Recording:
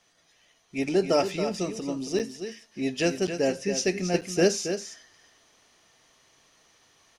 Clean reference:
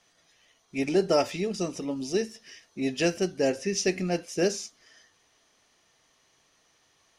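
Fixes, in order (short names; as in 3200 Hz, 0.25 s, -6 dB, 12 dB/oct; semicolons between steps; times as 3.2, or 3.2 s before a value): interpolate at 2.19/3.27/4.21, 7.2 ms; inverse comb 0.275 s -9 dB; gain 0 dB, from 4.14 s -4 dB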